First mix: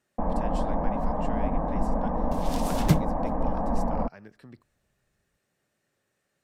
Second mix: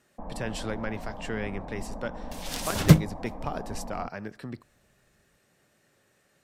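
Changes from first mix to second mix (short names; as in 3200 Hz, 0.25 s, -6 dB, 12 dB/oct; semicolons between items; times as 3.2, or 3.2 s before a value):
speech +10.0 dB; first sound -12.0 dB; second sound +6.0 dB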